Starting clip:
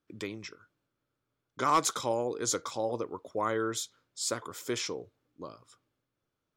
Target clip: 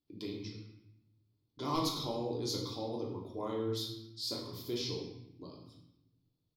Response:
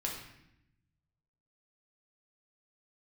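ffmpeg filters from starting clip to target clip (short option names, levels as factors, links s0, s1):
-filter_complex "[0:a]firequalizer=gain_entry='entry(110,0);entry(170,-4);entry(260,-2);entry(570,-11);entry(850,-8);entry(1500,-24);entry(2300,-13);entry(4400,3);entry(7300,-21);entry(12000,-3)':delay=0.05:min_phase=1[s0];[1:a]atrim=start_sample=2205[s1];[s0][s1]afir=irnorm=-1:irlink=0"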